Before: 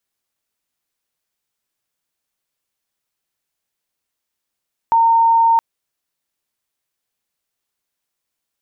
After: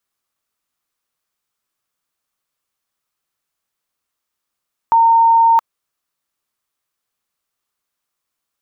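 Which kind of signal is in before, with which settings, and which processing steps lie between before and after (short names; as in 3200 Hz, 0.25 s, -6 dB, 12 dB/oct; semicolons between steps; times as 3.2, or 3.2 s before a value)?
tone sine 916 Hz -9.5 dBFS 0.67 s
bell 1200 Hz +7.5 dB 0.45 oct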